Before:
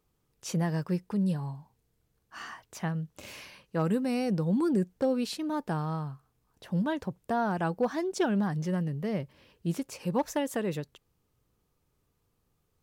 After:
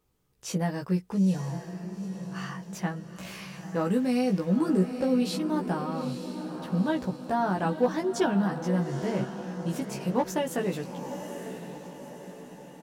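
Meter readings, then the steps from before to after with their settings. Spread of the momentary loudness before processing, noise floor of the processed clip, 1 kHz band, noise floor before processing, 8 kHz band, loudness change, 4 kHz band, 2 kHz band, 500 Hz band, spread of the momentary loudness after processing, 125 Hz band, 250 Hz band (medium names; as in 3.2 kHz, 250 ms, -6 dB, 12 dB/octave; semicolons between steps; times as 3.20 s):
15 LU, -48 dBFS, +3.0 dB, -76 dBFS, +2.5 dB, +2.0 dB, +2.5 dB, +2.0 dB, +3.0 dB, 15 LU, +1.0 dB, +3.0 dB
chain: doubling 16 ms -2.5 dB; echo that smears into a reverb 896 ms, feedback 51%, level -9 dB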